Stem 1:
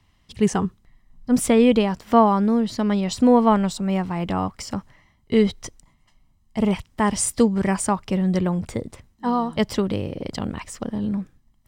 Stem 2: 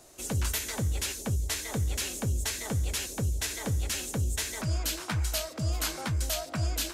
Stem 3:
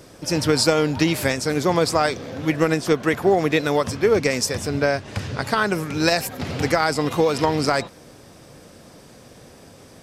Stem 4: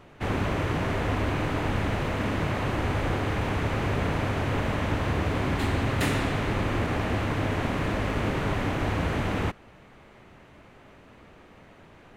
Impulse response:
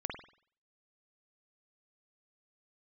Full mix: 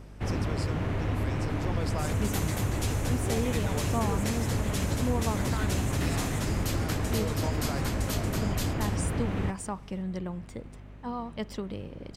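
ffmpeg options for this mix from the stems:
-filter_complex "[0:a]adelay=1800,volume=-13.5dB,asplit=2[link_01][link_02];[link_02]volume=-20dB[link_03];[1:a]adelay=1800,volume=-3dB,asplit=2[link_04][link_05];[link_05]volume=-4.5dB[link_06];[2:a]tremolo=f=0.53:d=0.69,volume=-15dB[link_07];[3:a]lowshelf=frequency=310:gain=8.5,aeval=exprs='val(0)+0.0112*(sin(2*PI*50*n/s)+sin(2*PI*2*50*n/s)/2+sin(2*PI*3*50*n/s)/3+sin(2*PI*4*50*n/s)/4+sin(2*PI*5*50*n/s)/5)':channel_layout=same,volume=-6.5dB,asplit=2[link_08][link_09];[link_09]volume=-19.5dB[link_10];[4:a]atrim=start_sample=2205[link_11];[link_03][link_11]afir=irnorm=-1:irlink=0[link_12];[link_06][link_10]amix=inputs=2:normalize=0,aecho=0:1:231:1[link_13];[link_01][link_04][link_07][link_08][link_12][link_13]amix=inputs=6:normalize=0,acompressor=threshold=-29dB:ratio=1.5"

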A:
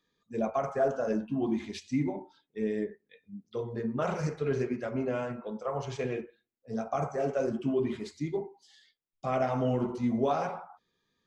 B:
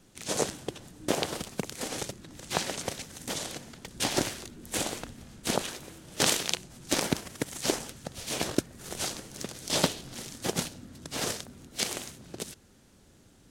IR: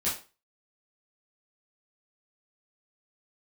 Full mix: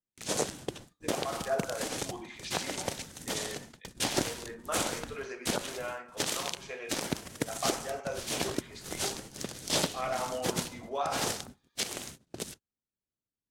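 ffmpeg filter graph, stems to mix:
-filter_complex "[0:a]highpass=800,adelay=700,volume=-0.5dB,asplit=2[link_01][link_02];[link_02]volume=-15dB[link_03];[1:a]agate=range=-39dB:threshold=-45dB:ratio=16:detection=peak,volume=-0.5dB[link_04];[2:a]atrim=start_sample=2205[link_05];[link_03][link_05]afir=irnorm=-1:irlink=0[link_06];[link_01][link_04][link_06]amix=inputs=3:normalize=0,alimiter=limit=-15dB:level=0:latency=1:release=225"

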